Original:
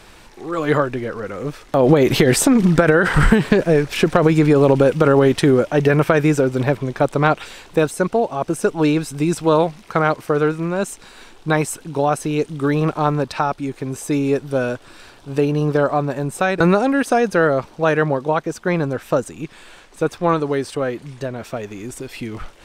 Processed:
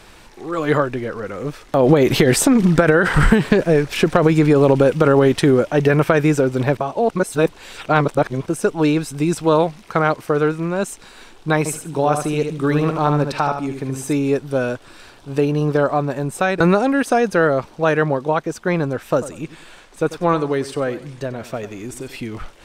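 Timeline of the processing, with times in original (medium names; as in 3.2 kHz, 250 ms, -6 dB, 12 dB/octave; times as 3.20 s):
6.77–8.46 s: reverse
11.58–14.13 s: feedback delay 75 ms, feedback 24%, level -6.5 dB
19.01–22.16 s: feedback delay 94 ms, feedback 28%, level -15 dB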